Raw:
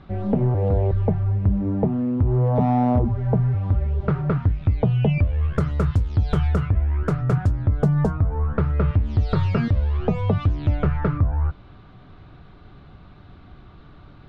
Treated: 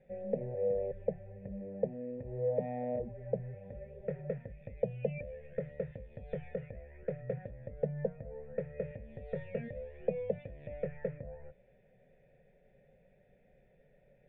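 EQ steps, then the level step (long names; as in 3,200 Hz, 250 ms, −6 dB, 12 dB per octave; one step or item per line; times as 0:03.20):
formant resonators in series e
high-shelf EQ 2,800 Hz +8 dB
phaser with its sweep stopped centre 310 Hz, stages 6
0.0 dB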